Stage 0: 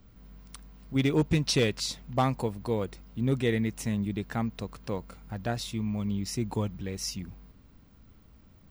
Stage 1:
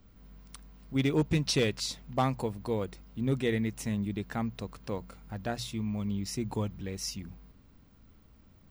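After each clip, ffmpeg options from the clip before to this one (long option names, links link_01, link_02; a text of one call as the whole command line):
ffmpeg -i in.wav -af "bandreject=frequency=60:width_type=h:width=6,bandreject=frequency=120:width_type=h:width=6,bandreject=frequency=180:width_type=h:width=6,volume=-2dB" out.wav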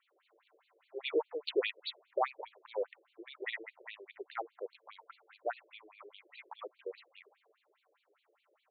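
ffmpeg -i in.wav -af "afftfilt=real='re*between(b*sr/1024,430*pow(3300/430,0.5+0.5*sin(2*PI*4.9*pts/sr))/1.41,430*pow(3300/430,0.5+0.5*sin(2*PI*4.9*pts/sr))*1.41)':imag='im*between(b*sr/1024,430*pow(3300/430,0.5+0.5*sin(2*PI*4.9*pts/sr))/1.41,430*pow(3300/430,0.5+0.5*sin(2*PI*4.9*pts/sr))*1.41)':win_size=1024:overlap=0.75,volume=2.5dB" out.wav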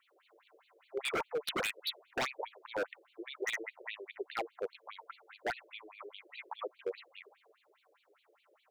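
ffmpeg -i in.wav -af "aeval=exprs='0.0237*(abs(mod(val(0)/0.0237+3,4)-2)-1)':channel_layout=same,volume=5dB" out.wav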